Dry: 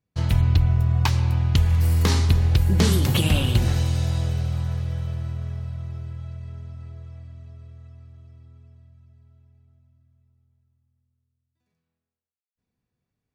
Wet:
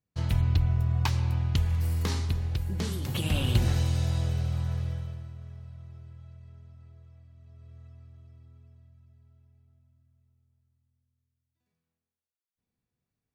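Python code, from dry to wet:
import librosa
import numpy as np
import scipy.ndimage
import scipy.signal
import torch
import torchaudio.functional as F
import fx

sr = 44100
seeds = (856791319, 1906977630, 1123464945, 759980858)

y = fx.gain(x, sr, db=fx.line((1.35, -6.0), (2.97, -13.5), (3.52, -4.0), (4.87, -4.0), (5.3, -13.0), (7.32, -13.0), (7.76, -5.0)))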